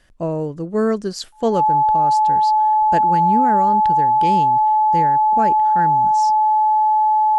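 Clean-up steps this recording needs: notch 860 Hz, Q 30

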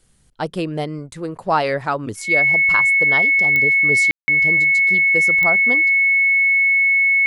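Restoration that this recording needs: de-click; notch 2200 Hz, Q 30; room tone fill 4.11–4.28

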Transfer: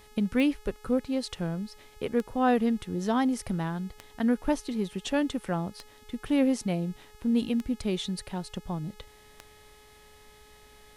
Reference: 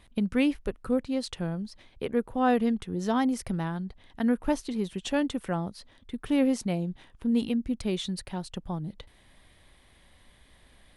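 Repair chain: de-click; de-hum 423.1 Hz, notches 35

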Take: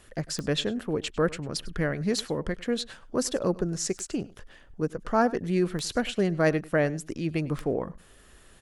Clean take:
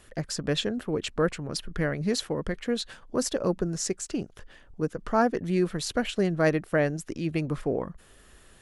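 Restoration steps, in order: de-click; inverse comb 0.1 s -20.5 dB

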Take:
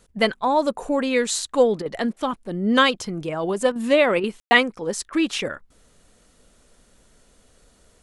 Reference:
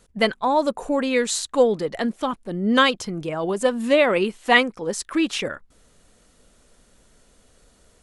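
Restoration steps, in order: room tone fill 4.4–4.51; interpolate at 1.82/2.13/3.72/4.2/5.09, 35 ms

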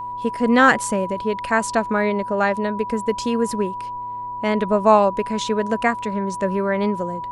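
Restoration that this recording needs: de-hum 112.9 Hz, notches 5; notch 980 Hz, Q 30

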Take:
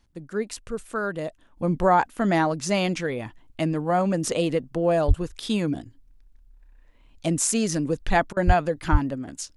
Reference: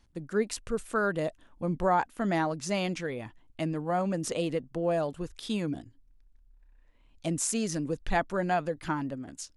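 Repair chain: de-plosive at 5.07/8.46/8.91; interpolate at 8.33, 36 ms; gain correction -6.5 dB, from 1.57

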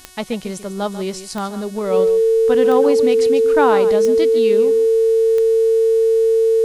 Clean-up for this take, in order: de-click; de-hum 368.7 Hz, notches 33; notch 450 Hz, Q 30; inverse comb 0.143 s -13 dB

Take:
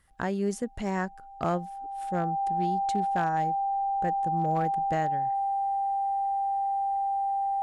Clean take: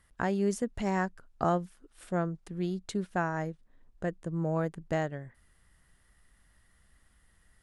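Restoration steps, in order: clip repair -19.5 dBFS; notch 790 Hz, Q 30

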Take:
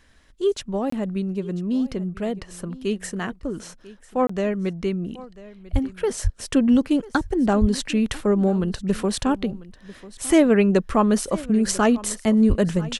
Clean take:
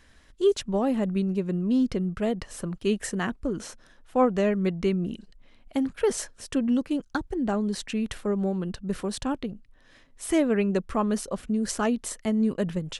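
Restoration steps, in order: de-plosive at 5.72/6.23/7.6/12.48; interpolate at 0.9/4.27, 24 ms; inverse comb 0.994 s -19 dB; gain 0 dB, from 6.39 s -7 dB

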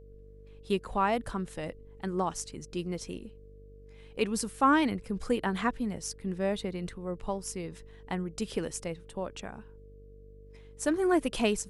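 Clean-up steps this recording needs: de-hum 49.2 Hz, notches 12; notch 450 Hz, Q 30

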